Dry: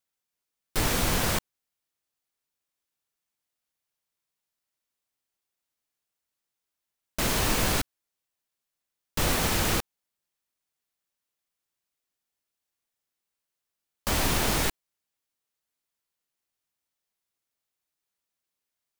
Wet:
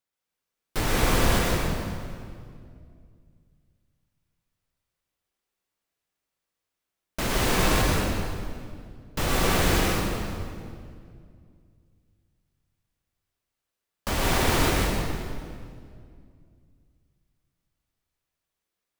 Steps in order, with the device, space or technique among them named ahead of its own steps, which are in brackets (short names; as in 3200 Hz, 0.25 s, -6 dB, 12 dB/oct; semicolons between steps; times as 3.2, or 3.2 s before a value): swimming-pool hall (reverb RT60 2.2 s, pre-delay 0.105 s, DRR -3 dB; high shelf 4000 Hz -6 dB)